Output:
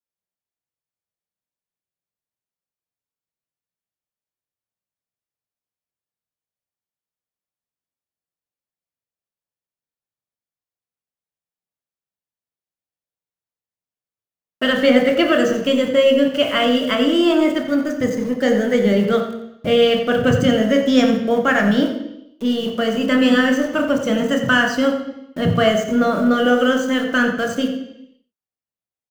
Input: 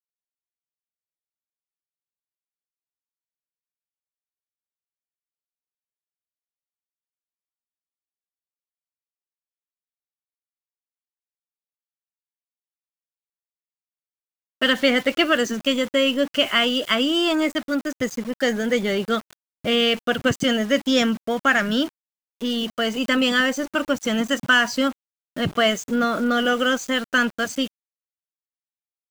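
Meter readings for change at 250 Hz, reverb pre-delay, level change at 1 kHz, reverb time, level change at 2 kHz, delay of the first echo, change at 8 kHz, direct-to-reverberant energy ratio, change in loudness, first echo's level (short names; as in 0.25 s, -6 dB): +6.0 dB, 23 ms, +3.0 dB, 0.85 s, +0.5 dB, 89 ms, -2.0 dB, 2.0 dB, +4.0 dB, -11.0 dB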